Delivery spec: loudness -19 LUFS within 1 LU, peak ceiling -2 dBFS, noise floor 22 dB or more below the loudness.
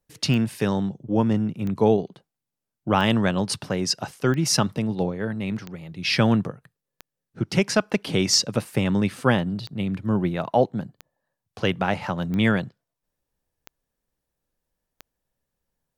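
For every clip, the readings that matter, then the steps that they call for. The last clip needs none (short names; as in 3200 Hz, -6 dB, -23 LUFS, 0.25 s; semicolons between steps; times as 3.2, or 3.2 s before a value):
clicks 12; loudness -23.5 LUFS; peak -5.5 dBFS; loudness target -19.0 LUFS
-> de-click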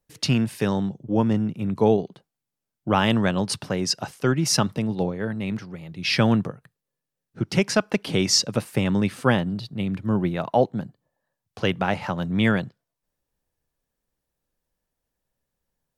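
clicks 0; loudness -23.5 LUFS; peak -5.5 dBFS; loudness target -19.0 LUFS
-> gain +4.5 dB; limiter -2 dBFS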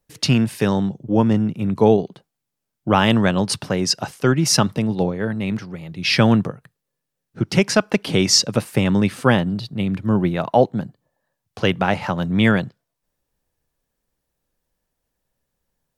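loudness -19.0 LUFS; peak -2.0 dBFS; noise floor -80 dBFS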